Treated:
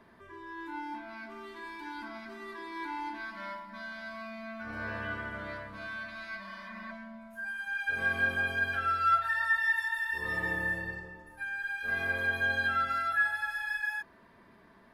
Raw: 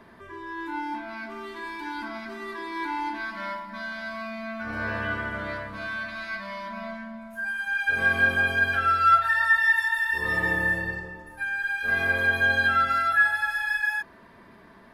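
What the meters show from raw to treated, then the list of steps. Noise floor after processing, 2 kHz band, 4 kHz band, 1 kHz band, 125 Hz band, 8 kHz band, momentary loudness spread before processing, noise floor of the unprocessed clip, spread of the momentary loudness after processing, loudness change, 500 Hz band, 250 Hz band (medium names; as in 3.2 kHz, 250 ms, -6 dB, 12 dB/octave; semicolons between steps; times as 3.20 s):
-59 dBFS, -7.5 dB, -7.5 dB, -7.5 dB, -7.5 dB, no reading, 16 LU, -51 dBFS, 16 LU, -7.5 dB, -7.5 dB, -7.5 dB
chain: spectral replace 6.45–6.89 s, 270–2600 Hz before; trim -7.5 dB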